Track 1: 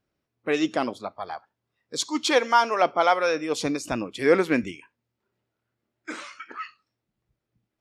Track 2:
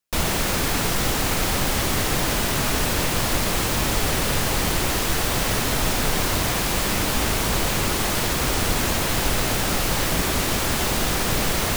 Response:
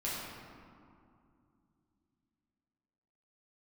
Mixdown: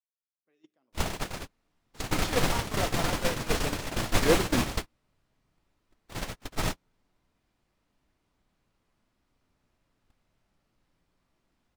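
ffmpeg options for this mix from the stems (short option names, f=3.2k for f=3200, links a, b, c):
-filter_complex "[0:a]acrossover=split=470[a][b];[b]acompressor=threshold=-27dB:ratio=4[c];[a][c]amix=inputs=2:normalize=0,flanger=delay=8.3:depth=8.2:regen=-80:speed=0.48:shape=sinusoidal,volume=1.5dB,asplit=3[d][e][f];[e]volume=-20dB[g];[1:a]highshelf=f=11k:g=-11.5,adelay=800,volume=-1.5dB,asplit=2[h][i];[i]volume=-12dB[j];[f]apad=whole_len=554194[k];[h][k]sidechaingate=range=-33dB:threshold=-45dB:ratio=16:detection=peak[l];[2:a]atrim=start_sample=2205[m];[g][j]amix=inputs=2:normalize=0[n];[n][m]afir=irnorm=-1:irlink=0[o];[d][l][o]amix=inputs=3:normalize=0,agate=range=-45dB:threshold=-19dB:ratio=16:detection=peak"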